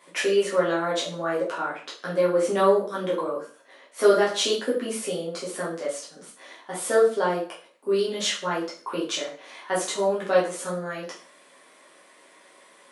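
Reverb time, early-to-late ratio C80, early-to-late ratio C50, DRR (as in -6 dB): 0.40 s, 12.0 dB, 6.5 dB, -7.0 dB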